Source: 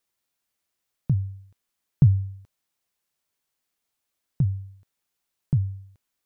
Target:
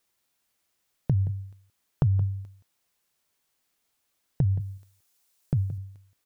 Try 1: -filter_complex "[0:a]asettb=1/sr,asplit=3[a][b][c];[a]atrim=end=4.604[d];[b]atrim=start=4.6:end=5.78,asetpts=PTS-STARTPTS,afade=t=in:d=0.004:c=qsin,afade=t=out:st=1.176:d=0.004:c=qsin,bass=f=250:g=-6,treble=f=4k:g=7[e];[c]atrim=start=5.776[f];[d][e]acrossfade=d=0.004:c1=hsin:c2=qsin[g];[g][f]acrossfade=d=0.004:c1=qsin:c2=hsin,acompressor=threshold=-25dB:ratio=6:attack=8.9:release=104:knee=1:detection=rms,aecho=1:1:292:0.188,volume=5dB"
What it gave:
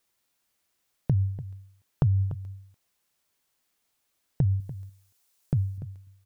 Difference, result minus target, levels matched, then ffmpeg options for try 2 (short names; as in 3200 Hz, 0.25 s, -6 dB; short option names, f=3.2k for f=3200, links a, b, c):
echo 0.119 s late
-filter_complex "[0:a]asettb=1/sr,asplit=3[a][b][c];[a]atrim=end=4.604[d];[b]atrim=start=4.6:end=5.78,asetpts=PTS-STARTPTS,afade=t=in:d=0.004:c=qsin,afade=t=out:st=1.176:d=0.004:c=qsin,bass=f=250:g=-6,treble=f=4k:g=7[e];[c]atrim=start=5.776[f];[d][e]acrossfade=d=0.004:c1=hsin:c2=qsin[g];[g][f]acrossfade=d=0.004:c1=qsin:c2=hsin,acompressor=threshold=-25dB:ratio=6:attack=8.9:release=104:knee=1:detection=rms,aecho=1:1:173:0.188,volume=5dB"